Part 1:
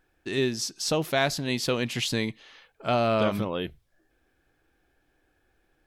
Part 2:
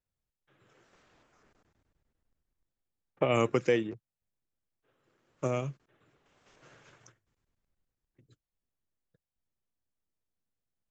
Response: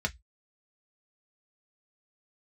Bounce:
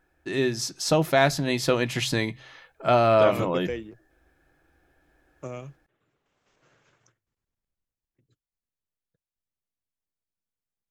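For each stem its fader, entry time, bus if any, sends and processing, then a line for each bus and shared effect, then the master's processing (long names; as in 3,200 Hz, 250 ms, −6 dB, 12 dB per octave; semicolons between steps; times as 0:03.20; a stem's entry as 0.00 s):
−0.5 dB, 0.00 s, send −12 dB, hum removal 64.95 Hz, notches 2; automatic gain control gain up to 3.5 dB
−6.0 dB, 0.00 s, no send, no processing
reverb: on, RT60 0.10 s, pre-delay 3 ms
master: no processing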